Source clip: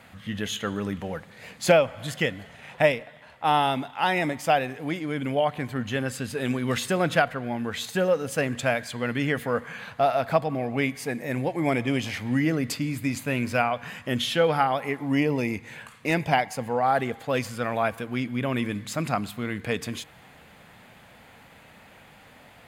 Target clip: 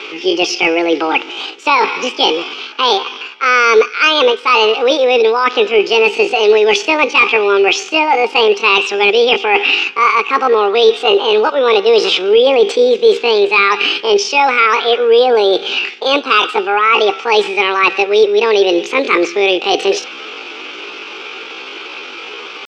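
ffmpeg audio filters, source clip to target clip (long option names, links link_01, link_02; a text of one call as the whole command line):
ffmpeg -i in.wav -af "areverse,acompressor=threshold=-30dB:ratio=8,areverse,asetrate=74167,aresample=44100,atempo=0.594604,highpass=frequency=370:width=0.5412,highpass=frequency=370:width=1.3066,equalizer=frequency=440:width_type=q:width=4:gain=4,equalizer=frequency=670:width_type=q:width=4:gain=-6,equalizer=frequency=990:width_type=q:width=4:gain=-7,equalizer=frequency=1800:width_type=q:width=4:gain=-9,equalizer=frequency=2500:width_type=q:width=4:gain=9,equalizer=frequency=4100:width_type=q:width=4:gain=-8,lowpass=frequency=4700:width=0.5412,lowpass=frequency=4700:width=1.3066,apsyclip=27dB,volume=-2dB" out.wav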